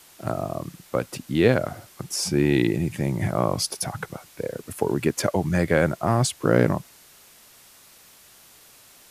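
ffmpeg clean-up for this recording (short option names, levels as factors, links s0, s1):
-af "afwtdn=0.0032"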